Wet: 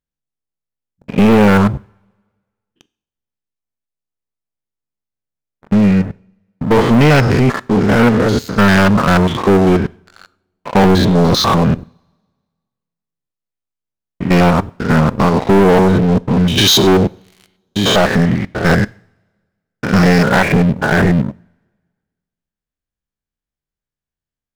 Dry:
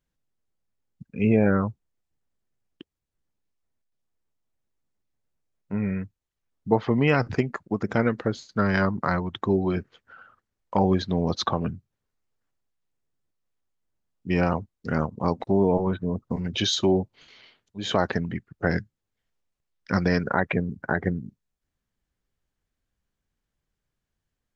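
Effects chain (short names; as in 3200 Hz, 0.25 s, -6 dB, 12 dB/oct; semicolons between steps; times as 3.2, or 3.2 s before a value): stepped spectrum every 0.1 s; sample leveller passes 5; two-slope reverb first 0.5 s, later 1.6 s, from -21 dB, DRR 19.5 dB; gain +3 dB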